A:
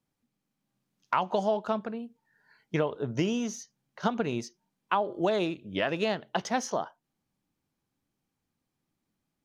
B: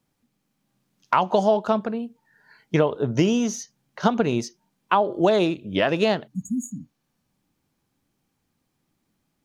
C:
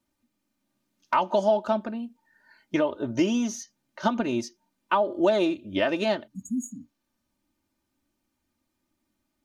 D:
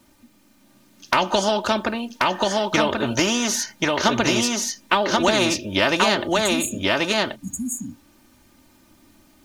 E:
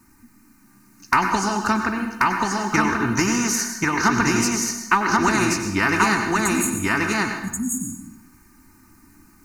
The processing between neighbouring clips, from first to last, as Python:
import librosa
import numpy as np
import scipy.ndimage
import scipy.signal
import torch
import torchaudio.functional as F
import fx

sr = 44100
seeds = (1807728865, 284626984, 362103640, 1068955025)

y1 = fx.spec_repair(x, sr, seeds[0], start_s=6.3, length_s=0.95, low_hz=280.0, high_hz=6600.0, source='after')
y1 = fx.dynamic_eq(y1, sr, hz=2000.0, q=0.77, threshold_db=-45.0, ratio=4.0, max_db=-3)
y1 = y1 * 10.0 ** (8.5 / 20.0)
y2 = y1 + 0.73 * np.pad(y1, (int(3.3 * sr / 1000.0), 0))[:len(y1)]
y2 = y2 * 10.0 ** (-5.5 / 20.0)
y3 = y2 + 10.0 ** (-3.0 / 20.0) * np.pad(y2, (int(1083 * sr / 1000.0), 0))[:len(y2)]
y3 = fx.spectral_comp(y3, sr, ratio=2.0)
y3 = y3 * 10.0 ** (6.5 / 20.0)
y4 = fx.fixed_phaser(y3, sr, hz=1400.0, stages=4)
y4 = fx.rev_plate(y4, sr, seeds[1], rt60_s=0.85, hf_ratio=0.75, predelay_ms=85, drr_db=5.5)
y4 = y4 * 10.0 ** (4.0 / 20.0)